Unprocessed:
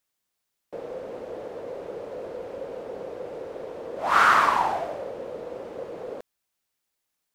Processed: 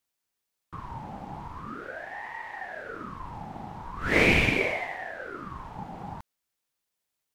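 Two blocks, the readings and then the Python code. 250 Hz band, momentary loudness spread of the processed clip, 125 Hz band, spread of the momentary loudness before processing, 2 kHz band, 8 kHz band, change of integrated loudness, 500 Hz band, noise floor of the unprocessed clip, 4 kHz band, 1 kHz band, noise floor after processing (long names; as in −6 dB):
+7.5 dB, 19 LU, +13.5 dB, 18 LU, +1.0 dB, −2.5 dB, −1.5 dB, −3.0 dB, −81 dBFS, +2.0 dB, −11.5 dB, −84 dBFS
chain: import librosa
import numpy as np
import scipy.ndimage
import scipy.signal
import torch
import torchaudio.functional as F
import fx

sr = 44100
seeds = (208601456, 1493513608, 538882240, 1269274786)

y = fx.ring_lfo(x, sr, carrier_hz=850.0, swing_pct=65, hz=0.42)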